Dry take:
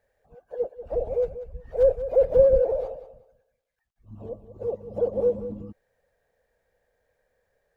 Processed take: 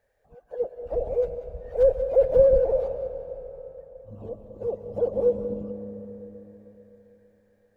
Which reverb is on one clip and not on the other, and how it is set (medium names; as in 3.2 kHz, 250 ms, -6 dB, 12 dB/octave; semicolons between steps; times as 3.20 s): algorithmic reverb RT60 3.9 s, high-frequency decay 0.65×, pre-delay 90 ms, DRR 9 dB